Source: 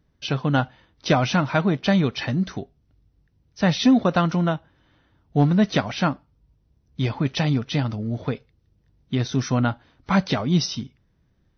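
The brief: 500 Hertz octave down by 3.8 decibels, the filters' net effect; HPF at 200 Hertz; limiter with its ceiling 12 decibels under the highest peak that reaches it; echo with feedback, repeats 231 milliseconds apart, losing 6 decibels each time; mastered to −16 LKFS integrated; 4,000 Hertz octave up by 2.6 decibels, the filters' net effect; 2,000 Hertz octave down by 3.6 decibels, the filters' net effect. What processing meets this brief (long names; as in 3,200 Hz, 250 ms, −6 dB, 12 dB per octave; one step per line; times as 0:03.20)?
high-pass filter 200 Hz
parametric band 500 Hz −4.5 dB
parametric band 2,000 Hz −6 dB
parametric band 4,000 Hz +5 dB
brickwall limiter −19 dBFS
repeating echo 231 ms, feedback 50%, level −6 dB
level +13.5 dB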